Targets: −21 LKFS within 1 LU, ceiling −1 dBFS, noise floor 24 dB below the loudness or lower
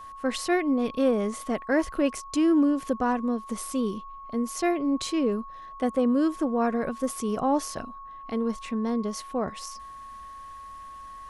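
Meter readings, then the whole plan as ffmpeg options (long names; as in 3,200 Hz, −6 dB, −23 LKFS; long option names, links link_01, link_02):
interfering tone 1,100 Hz; level of the tone −40 dBFS; integrated loudness −27.0 LKFS; sample peak −12.0 dBFS; target loudness −21.0 LKFS
→ -af "bandreject=frequency=1100:width=30"
-af "volume=6dB"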